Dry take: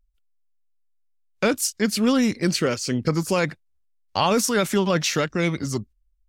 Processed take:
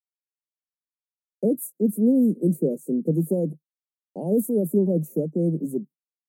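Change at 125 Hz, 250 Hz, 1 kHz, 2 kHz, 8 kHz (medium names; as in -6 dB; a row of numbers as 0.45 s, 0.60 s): 0.0 dB, +1.5 dB, under -20 dB, under -40 dB, -14.0 dB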